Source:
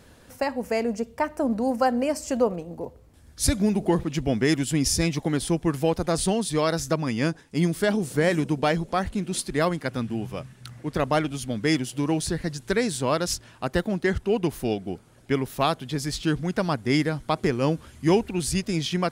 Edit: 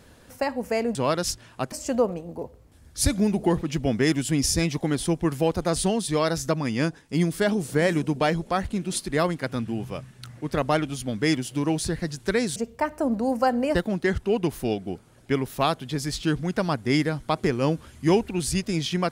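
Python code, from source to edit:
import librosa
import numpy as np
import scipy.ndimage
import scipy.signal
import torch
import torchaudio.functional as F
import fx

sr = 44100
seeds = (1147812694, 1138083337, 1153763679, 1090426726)

y = fx.edit(x, sr, fx.swap(start_s=0.95, length_s=1.19, other_s=12.98, other_length_s=0.77), tone=tone)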